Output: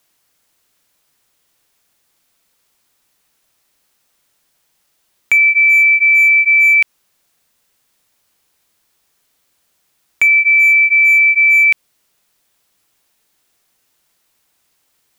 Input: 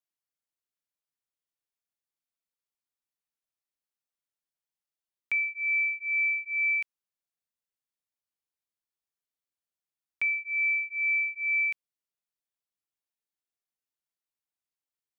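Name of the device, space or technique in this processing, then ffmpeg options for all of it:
loud club master: -af "acompressor=threshold=0.0224:ratio=1.5,asoftclip=type=hard:threshold=0.0473,alimiter=level_in=56.2:limit=0.891:release=50:level=0:latency=1,volume=0.531"

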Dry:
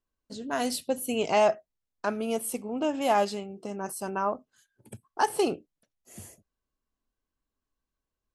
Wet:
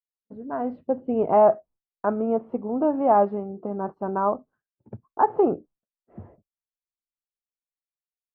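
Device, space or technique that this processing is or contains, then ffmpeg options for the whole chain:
action camera in a waterproof case: -af "agate=range=0.0224:threshold=0.00316:ratio=3:detection=peak,lowpass=f=1200:w=0.5412,lowpass=f=1200:w=1.3066,dynaudnorm=f=100:g=17:m=2" -ar 24000 -c:a aac -b:a 96k

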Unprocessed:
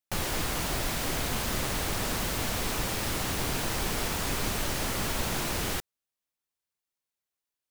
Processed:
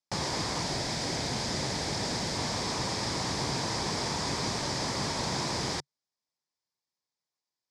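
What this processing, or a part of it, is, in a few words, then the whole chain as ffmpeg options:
car door speaker: -filter_complex "[0:a]asettb=1/sr,asplit=3[s0][s1][s2];[s0]atrim=end=0.634[s3];[s1]atrim=start=0.63:end=2.36,asetpts=PTS-STARTPTS,afade=t=in:d=0.004:c=qsin,afade=t=out:st=1.726:d=0.004:c=qsin,equalizer=f=1100:t=o:w=0.4:g=-6[s4];[s2]atrim=start=2.356[s5];[s3][s4]acrossfade=d=0.004:c1=hsin:c2=qsin[s6];[s6][s5]acrossfade=d=0.004:c1=qsin:c2=hsin,highpass=96,equalizer=f=140:t=q:w=4:g=4,equalizer=f=950:t=q:w=4:g=5,equalizer=f=1400:t=q:w=4:g=-6,equalizer=f=2800:t=q:w=4:g=-9,equalizer=f=5000:t=q:w=4:g=8,lowpass=f=7500:w=0.5412,lowpass=f=7500:w=1.3066"

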